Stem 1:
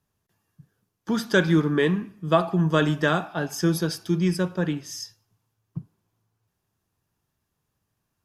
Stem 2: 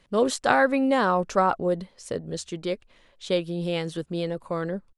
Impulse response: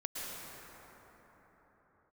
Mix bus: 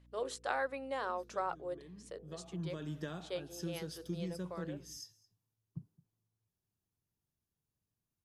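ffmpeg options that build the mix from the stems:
-filter_complex "[0:a]acompressor=threshold=-23dB:ratio=5,equalizer=frequency=1400:width_type=o:width=2.7:gain=-8.5,volume=-11dB,afade=type=in:start_time=2.24:duration=0.56:silence=0.316228,asplit=2[link_01][link_02];[link_02]volume=-23dB[link_03];[1:a]highpass=frequency=350:width=0.5412,highpass=frequency=350:width=1.3066,bandreject=frequency=50:width_type=h:width=6,bandreject=frequency=100:width_type=h:width=6,bandreject=frequency=150:width_type=h:width=6,bandreject=frequency=200:width_type=h:width=6,bandreject=frequency=250:width_type=h:width=6,bandreject=frequency=300:width_type=h:width=6,bandreject=frequency=350:width_type=h:width=6,bandreject=frequency=400:width_type=h:width=6,bandreject=frequency=450:width_type=h:width=6,bandreject=frequency=500:width_type=h:width=6,aeval=exprs='val(0)+0.00447*(sin(2*PI*60*n/s)+sin(2*PI*2*60*n/s)/2+sin(2*PI*3*60*n/s)/3+sin(2*PI*4*60*n/s)/4+sin(2*PI*5*60*n/s)/5)':channel_layout=same,volume=-15dB,asplit=2[link_04][link_05];[link_05]apad=whole_len=363795[link_06];[link_01][link_06]sidechaincompress=threshold=-43dB:ratio=8:attack=45:release=593[link_07];[link_03]aecho=0:1:216:1[link_08];[link_07][link_04][link_08]amix=inputs=3:normalize=0"

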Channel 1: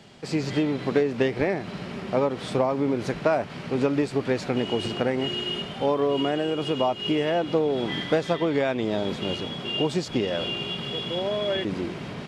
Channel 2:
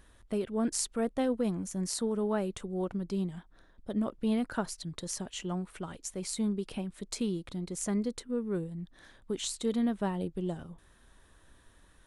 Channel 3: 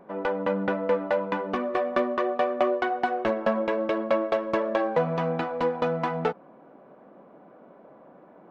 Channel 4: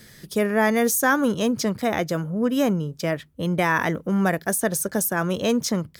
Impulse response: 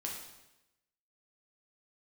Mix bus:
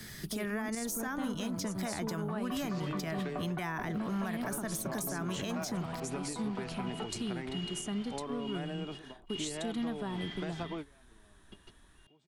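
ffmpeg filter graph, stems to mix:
-filter_complex "[0:a]adelay=2300,volume=-12dB[link_01];[1:a]volume=-0.5dB,asplit=2[link_02][link_03];[2:a]lowpass=1400,adelay=750,volume=-11.5dB[link_04];[3:a]acompressor=threshold=-33dB:ratio=2,volume=1.5dB[link_05];[link_03]apad=whole_len=642655[link_06];[link_01][link_06]sidechaingate=range=-29dB:threshold=-53dB:ratio=16:detection=peak[link_07];[link_07][link_02][link_04][link_05]amix=inputs=4:normalize=0,equalizer=frequency=520:width_type=o:width=0.21:gain=-12,acrossover=split=190|770[link_08][link_09][link_10];[link_08]acompressor=threshold=-37dB:ratio=4[link_11];[link_09]acompressor=threshold=-38dB:ratio=4[link_12];[link_10]acompressor=threshold=-36dB:ratio=4[link_13];[link_11][link_12][link_13]amix=inputs=3:normalize=0,alimiter=level_in=2.5dB:limit=-24dB:level=0:latency=1:release=66,volume=-2.5dB"

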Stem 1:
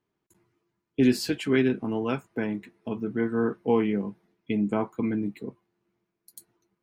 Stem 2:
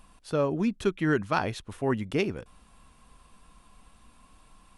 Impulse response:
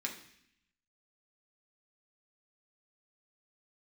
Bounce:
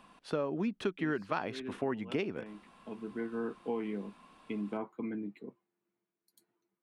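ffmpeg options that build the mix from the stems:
-filter_complex "[0:a]volume=-9dB[link_01];[1:a]volume=2dB,asplit=2[link_02][link_03];[link_03]apad=whole_len=300942[link_04];[link_01][link_04]sidechaincompress=threshold=-31dB:ratio=6:attack=40:release=1080[link_05];[link_05][link_02]amix=inputs=2:normalize=0,acrossover=split=150 4300:gain=0.0708 1 0.224[link_06][link_07][link_08];[link_06][link_07][link_08]amix=inputs=3:normalize=0,acompressor=threshold=-31dB:ratio=4"

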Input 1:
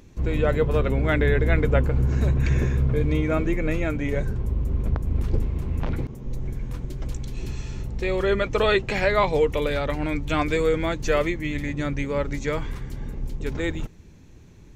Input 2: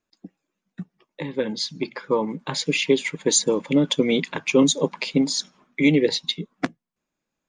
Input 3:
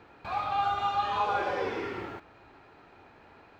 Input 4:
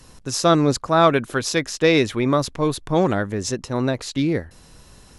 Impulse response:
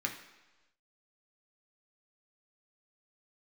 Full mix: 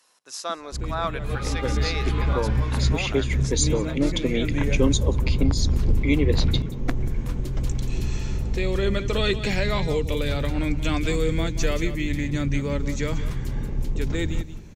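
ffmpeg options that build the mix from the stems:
-filter_complex "[0:a]acrossover=split=280|3000[link_01][link_02][link_03];[link_02]acompressor=threshold=-44dB:ratio=2[link_04];[link_01][link_04][link_03]amix=inputs=3:normalize=0,aeval=exprs='0.473*sin(PI/2*1.58*val(0)/0.473)':channel_layout=same,adelay=550,volume=-3dB,asplit=2[link_05][link_06];[link_06]volume=-12dB[link_07];[1:a]adelay=250,volume=-5dB,asplit=2[link_08][link_09];[link_09]volume=-23.5dB[link_10];[2:a]highpass=1400,adelay=1000,volume=-2dB[link_11];[3:a]highpass=710,volume=-10dB,asplit=3[link_12][link_13][link_14];[link_13]volume=-23dB[link_15];[link_14]apad=whole_len=674731[link_16];[link_05][link_16]sidechaincompress=threshold=-44dB:ratio=8:attack=16:release=234[link_17];[link_07][link_10][link_15]amix=inputs=3:normalize=0,aecho=0:1:181:1[link_18];[link_17][link_08][link_11][link_12][link_18]amix=inputs=5:normalize=0,bandreject=frequency=50:width_type=h:width=6,bandreject=frequency=100:width_type=h:width=6,bandreject=frequency=150:width_type=h:width=6"

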